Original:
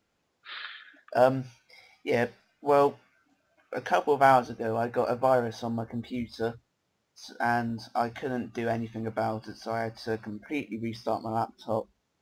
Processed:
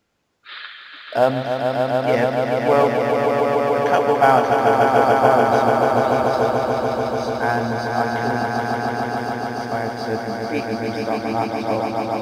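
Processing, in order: 8.51–9.72 s: inverse Chebyshev band-stop 100–1600 Hz, stop band 50 dB; echo with a slow build-up 145 ms, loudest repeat 5, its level -5 dB; trim +5 dB

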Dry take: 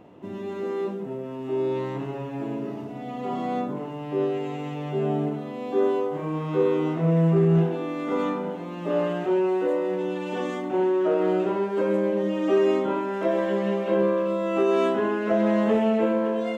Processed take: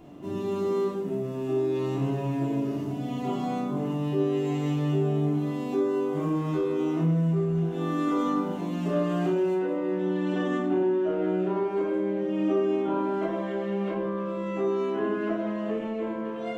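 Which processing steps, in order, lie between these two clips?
tone controls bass +4 dB, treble +11 dB, from 9.54 s treble -3 dB; compression 6:1, threshold -25 dBFS, peak gain reduction 11.5 dB; simulated room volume 720 m³, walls furnished, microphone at 3.2 m; trim -4.5 dB

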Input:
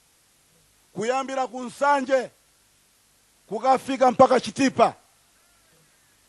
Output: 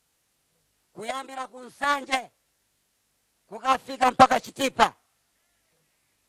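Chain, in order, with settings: Chebyshev shaper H 7 -20 dB, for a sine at -2 dBFS; formant shift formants +4 st

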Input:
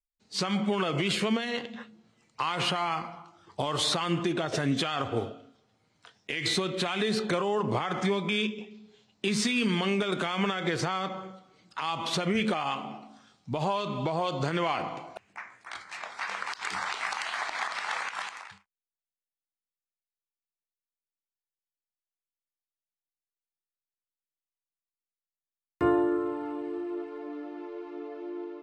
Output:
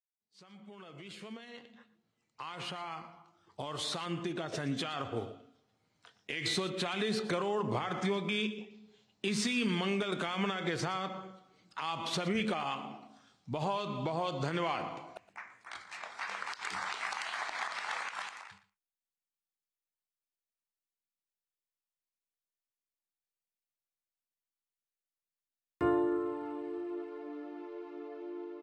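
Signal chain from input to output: fade-in on the opening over 6.37 s; delay 118 ms -17 dB; trim -5 dB

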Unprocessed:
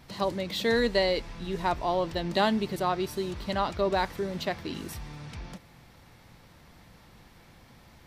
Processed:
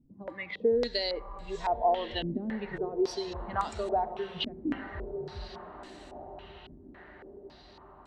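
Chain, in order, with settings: level-controlled noise filter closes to 750 Hz, open at -26.5 dBFS; spectral noise reduction 15 dB; compression, threshold -31 dBFS, peak gain reduction 11 dB; echo that smears into a reverb 1284 ms, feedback 53%, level -11.5 dB; reverberation RT60 1.5 s, pre-delay 58 ms, DRR 18 dB; step-sequenced low-pass 3.6 Hz 270–7800 Hz

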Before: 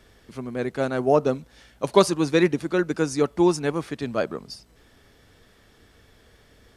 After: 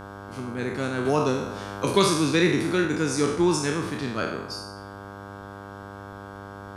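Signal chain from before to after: spectral sustain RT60 0.77 s; peaking EQ 640 Hz -12 dB 0.98 oct; mains buzz 100 Hz, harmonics 16, -40 dBFS -2 dB/octave; 1.05–2.85 s: three bands compressed up and down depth 40%

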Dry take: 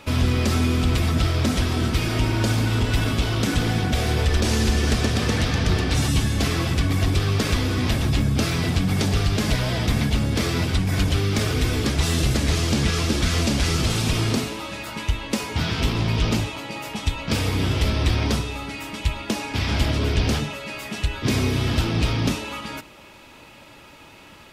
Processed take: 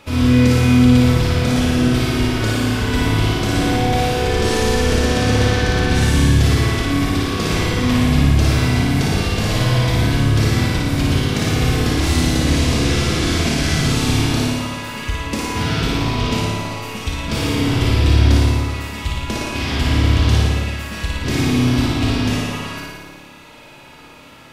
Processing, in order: flutter echo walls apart 9.7 m, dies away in 1.3 s; reverberation RT60 0.80 s, pre-delay 25 ms, DRR 2 dB; trim -1.5 dB

